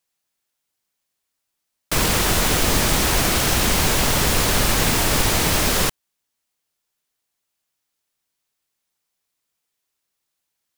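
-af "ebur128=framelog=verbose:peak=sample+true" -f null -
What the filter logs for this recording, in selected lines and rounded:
Integrated loudness:
  I:         -18.0 LUFS
  Threshold: -28.0 LUFS
Loudness range:
  LRA:         7.2 LU
  Threshold: -39.6 LUFS
  LRA low:   -24.8 LUFS
  LRA high:  -17.6 LUFS
Sample peak:
  Peak:       -5.4 dBFS
True peak:
  Peak:       -5.2 dBFS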